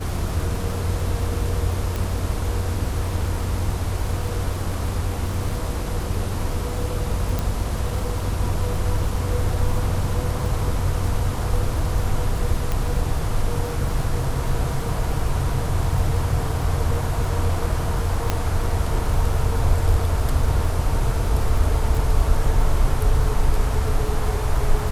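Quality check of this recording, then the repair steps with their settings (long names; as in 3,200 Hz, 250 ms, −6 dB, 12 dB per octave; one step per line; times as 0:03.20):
surface crackle 30 per second −28 dBFS
0:01.96: click
0:07.39: click
0:12.72: click
0:18.30: click −6 dBFS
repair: click removal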